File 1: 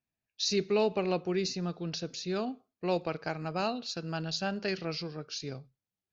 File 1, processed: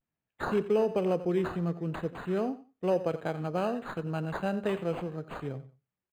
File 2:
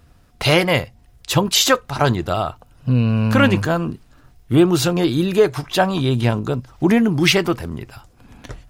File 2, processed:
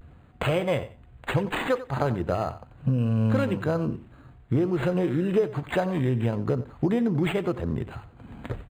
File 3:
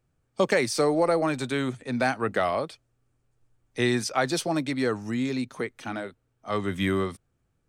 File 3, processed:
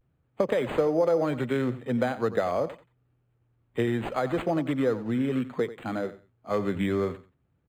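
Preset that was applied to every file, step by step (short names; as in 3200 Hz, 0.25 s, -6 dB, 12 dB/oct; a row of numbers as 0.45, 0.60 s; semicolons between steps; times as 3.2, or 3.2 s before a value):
compressor 6:1, threshold -25 dBFS; HPF 61 Hz; on a send: feedback echo 91 ms, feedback 22%, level -15 dB; on the sum: dynamic EQ 500 Hz, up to +7 dB, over -45 dBFS, Q 3; notches 50/100 Hz; vibrato 0.45 Hz 48 cents; low shelf 250 Hz +5 dB; decimation joined by straight lines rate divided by 8×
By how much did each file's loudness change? +1.5, -8.5, -1.0 LU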